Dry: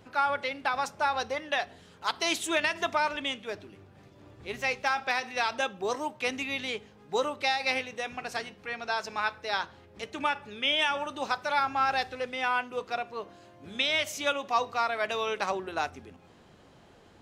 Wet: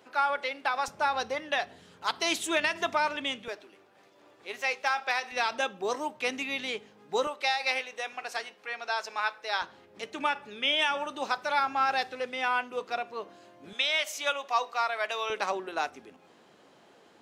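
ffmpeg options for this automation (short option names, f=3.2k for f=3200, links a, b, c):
-af "asetnsamples=n=441:p=0,asendcmd='0.88 highpass f 110;3.48 highpass f 450;5.32 highpass f 190;7.27 highpass f 490;9.62 highpass f 200;13.73 highpass f 560;15.3 highpass f 260',highpass=340"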